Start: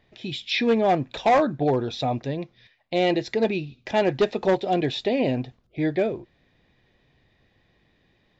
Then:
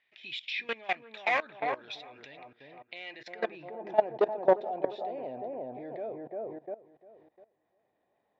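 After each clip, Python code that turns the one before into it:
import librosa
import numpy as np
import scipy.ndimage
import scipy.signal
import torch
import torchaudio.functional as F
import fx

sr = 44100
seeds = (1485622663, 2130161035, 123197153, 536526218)

y = fx.echo_wet_lowpass(x, sr, ms=350, feedback_pct=33, hz=1400.0, wet_db=-3.5)
y = fx.level_steps(y, sr, step_db=18)
y = fx.filter_sweep_bandpass(y, sr, from_hz=2300.0, to_hz=730.0, start_s=3.05, end_s=3.92, q=2.0)
y = F.gain(torch.from_numpy(y), 5.0).numpy()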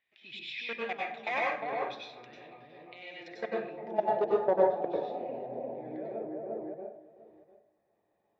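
y = fx.low_shelf(x, sr, hz=440.0, db=5.0)
y = fx.rev_plate(y, sr, seeds[0], rt60_s=0.52, hf_ratio=0.65, predelay_ms=85, drr_db=-4.0)
y = F.gain(torch.from_numpy(y), -7.5).numpy()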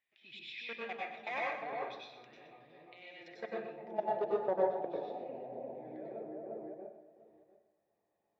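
y = x + 10.0 ** (-10.5 / 20.0) * np.pad(x, (int(122 * sr / 1000.0), 0))[:len(x)]
y = F.gain(torch.from_numpy(y), -6.5).numpy()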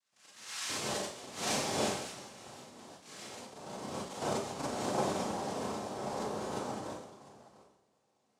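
y = fx.auto_swell(x, sr, attack_ms=270.0)
y = fx.noise_vocoder(y, sr, seeds[1], bands=2)
y = fx.rev_schroeder(y, sr, rt60_s=0.42, comb_ms=29, drr_db=-6.0)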